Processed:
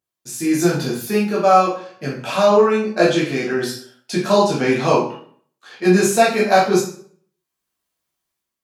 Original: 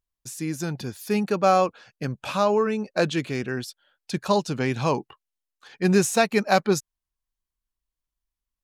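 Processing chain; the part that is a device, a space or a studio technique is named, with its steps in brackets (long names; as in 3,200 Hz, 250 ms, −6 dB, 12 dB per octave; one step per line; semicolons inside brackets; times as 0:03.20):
far laptop microphone (convolution reverb RT60 0.55 s, pre-delay 8 ms, DRR −7 dB; high-pass filter 180 Hz 12 dB per octave; automatic gain control gain up to 8 dB)
level −1 dB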